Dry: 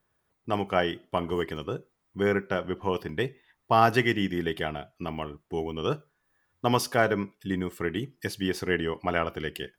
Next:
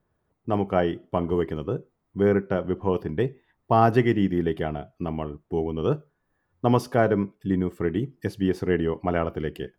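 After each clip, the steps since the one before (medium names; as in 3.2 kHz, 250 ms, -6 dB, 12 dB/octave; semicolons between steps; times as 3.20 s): tilt shelf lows +8 dB, about 1.2 kHz; trim -1.5 dB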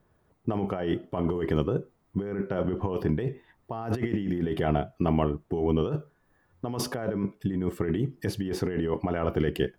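compressor with a negative ratio -29 dBFS, ratio -1; trim +1.5 dB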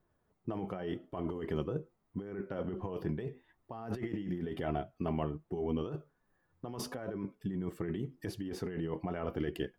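flange 0.84 Hz, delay 2.6 ms, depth 4 ms, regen +60%; trim -5 dB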